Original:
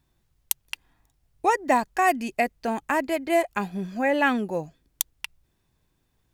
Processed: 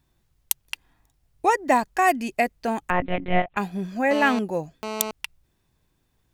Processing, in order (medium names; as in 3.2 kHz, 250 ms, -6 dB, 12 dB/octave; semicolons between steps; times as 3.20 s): 2.90–3.57 s: monotone LPC vocoder at 8 kHz 180 Hz; 4.11–5.11 s: mobile phone buzz -32 dBFS; trim +1.5 dB